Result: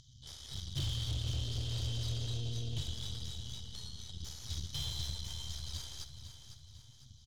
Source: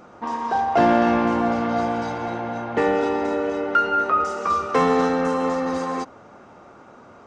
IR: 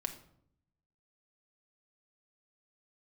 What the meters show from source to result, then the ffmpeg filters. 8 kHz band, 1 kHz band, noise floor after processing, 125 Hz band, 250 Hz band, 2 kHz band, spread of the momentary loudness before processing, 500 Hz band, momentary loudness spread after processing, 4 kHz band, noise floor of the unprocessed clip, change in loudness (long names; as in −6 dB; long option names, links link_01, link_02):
−1.0 dB, below −40 dB, −58 dBFS, −1.0 dB, −28.5 dB, −29.5 dB, 10 LU, −35.0 dB, 15 LU, +0.5 dB, −47 dBFS, −18.0 dB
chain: -filter_complex "[0:a]afftfilt=real='re*(1-between(b*sr/4096,150,3000))':imag='im*(1-between(b*sr/4096,150,3000))':win_size=4096:overlap=0.75,acrossover=split=3600[link_01][link_02];[link_02]acompressor=threshold=-53dB:ratio=4:attack=1:release=60[link_03];[link_01][link_03]amix=inputs=2:normalize=0,aresample=16000,asoftclip=type=hard:threshold=-37dB,aresample=44100,aeval=exprs='0.0188*(cos(1*acos(clip(val(0)/0.0188,-1,1)))-cos(1*PI/2))+0.00266*(cos(2*acos(clip(val(0)/0.0188,-1,1)))-cos(2*PI/2))+0.00266*(cos(3*acos(clip(val(0)/0.0188,-1,1)))-cos(3*PI/2))+0.00237*(cos(4*acos(clip(val(0)/0.0188,-1,1)))-cos(4*PI/2))+0.00075*(cos(8*acos(clip(val(0)/0.0188,-1,1)))-cos(8*PI/2))':channel_layout=same,aecho=1:1:502|1004|1506|2008|2510:0.316|0.142|0.064|0.0288|0.013,volume=7dB"